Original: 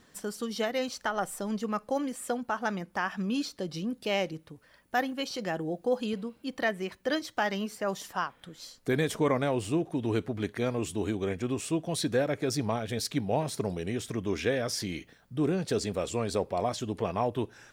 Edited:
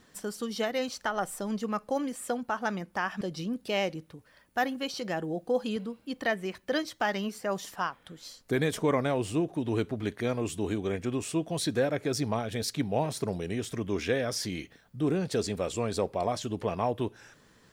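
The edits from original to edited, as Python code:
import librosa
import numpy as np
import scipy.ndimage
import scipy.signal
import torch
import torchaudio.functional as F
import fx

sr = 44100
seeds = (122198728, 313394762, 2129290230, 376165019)

y = fx.edit(x, sr, fx.cut(start_s=3.21, length_s=0.37), tone=tone)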